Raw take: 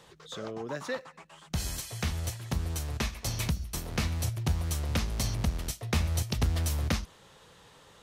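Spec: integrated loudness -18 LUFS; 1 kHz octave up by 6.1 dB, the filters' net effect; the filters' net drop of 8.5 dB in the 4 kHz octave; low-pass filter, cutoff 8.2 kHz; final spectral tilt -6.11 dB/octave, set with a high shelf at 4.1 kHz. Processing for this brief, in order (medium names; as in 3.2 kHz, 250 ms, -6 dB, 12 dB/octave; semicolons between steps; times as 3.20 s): low-pass 8.2 kHz; peaking EQ 1 kHz +8.5 dB; peaking EQ 4 kHz -8 dB; treble shelf 4.1 kHz -5.5 dB; trim +15 dB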